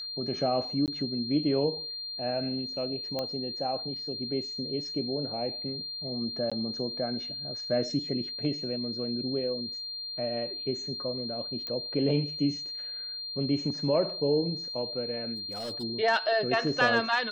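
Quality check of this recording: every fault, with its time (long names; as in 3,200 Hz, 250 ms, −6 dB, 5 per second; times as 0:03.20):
whistle 4,200 Hz −35 dBFS
0:00.86–0:00.88: drop-out 18 ms
0:03.19: click −18 dBFS
0:06.50–0:06.52: drop-out 16 ms
0:11.67: click −22 dBFS
0:15.36–0:15.84: clipping −32 dBFS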